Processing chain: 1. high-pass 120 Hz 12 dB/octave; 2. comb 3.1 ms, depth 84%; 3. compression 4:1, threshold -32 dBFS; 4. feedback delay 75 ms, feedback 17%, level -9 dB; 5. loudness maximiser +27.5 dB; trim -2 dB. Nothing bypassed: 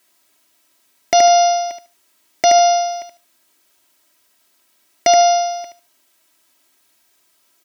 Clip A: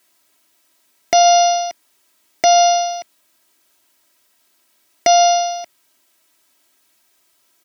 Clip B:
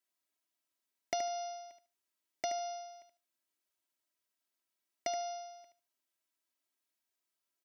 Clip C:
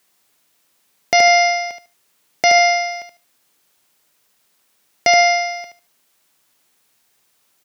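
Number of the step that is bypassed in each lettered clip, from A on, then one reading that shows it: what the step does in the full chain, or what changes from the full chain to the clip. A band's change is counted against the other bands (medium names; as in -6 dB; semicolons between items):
4, 4 kHz band +2.0 dB; 5, crest factor change +9.0 dB; 2, 2 kHz band +16.5 dB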